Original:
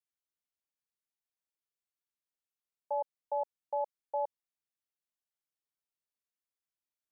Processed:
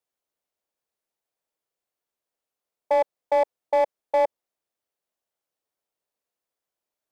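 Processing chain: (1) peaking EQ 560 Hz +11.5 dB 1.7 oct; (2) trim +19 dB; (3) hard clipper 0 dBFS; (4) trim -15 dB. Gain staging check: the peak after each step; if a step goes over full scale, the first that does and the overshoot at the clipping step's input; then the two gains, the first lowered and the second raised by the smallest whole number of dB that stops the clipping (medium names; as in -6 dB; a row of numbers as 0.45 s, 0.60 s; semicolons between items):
-15.5 dBFS, +3.5 dBFS, 0.0 dBFS, -15.0 dBFS; step 2, 3.5 dB; step 2 +15 dB, step 4 -11 dB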